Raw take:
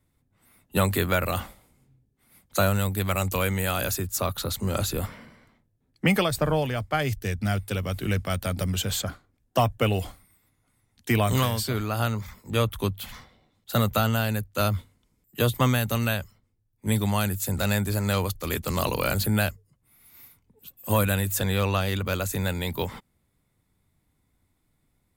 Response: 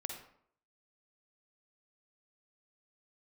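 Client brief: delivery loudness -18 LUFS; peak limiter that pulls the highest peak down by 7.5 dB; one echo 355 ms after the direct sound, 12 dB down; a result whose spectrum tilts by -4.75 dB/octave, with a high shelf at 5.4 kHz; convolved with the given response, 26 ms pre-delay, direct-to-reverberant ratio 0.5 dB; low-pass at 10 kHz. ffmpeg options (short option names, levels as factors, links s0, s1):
-filter_complex "[0:a]lowpass=10000,highshelf=f=5400:g=6,alimiter=limit=0.133:level=0:latency=1,aecho=1:1:355:0.251,asplit=2[s0][s1];[1:a]atrim=start_sample=2205,adelay=26[s2];[s1][s2]afir=irnorm=-1:irlink=0,volume=1.06[s3];[s0][s3]amix=inputs=2:normalize=0,volume=2.66"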